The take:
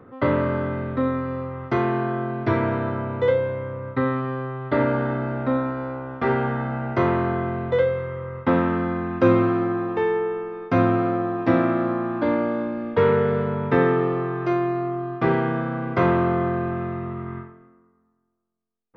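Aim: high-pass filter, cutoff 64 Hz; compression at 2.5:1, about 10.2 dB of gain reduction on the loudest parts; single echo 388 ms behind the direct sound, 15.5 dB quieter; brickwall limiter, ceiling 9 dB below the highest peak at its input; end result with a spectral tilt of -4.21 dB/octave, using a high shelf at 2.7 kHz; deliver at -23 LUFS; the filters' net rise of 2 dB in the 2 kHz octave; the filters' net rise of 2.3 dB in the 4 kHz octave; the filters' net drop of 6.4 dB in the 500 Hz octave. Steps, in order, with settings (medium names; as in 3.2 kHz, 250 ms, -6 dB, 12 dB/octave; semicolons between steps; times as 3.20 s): high-pass 64 Hz; peaking EQ 500 Hz -8.5 dB; peaking EQ 2 kHz +4 dB; treble shelf 2.7 kHz -5 dB; peaking EQ 4 kHz +5.5 dB; compression 2.5:1, threshold -32 dBFS; peak limiter -26.5 dBFS; delay 388 ms -15.5 dB; trim +12.5 dB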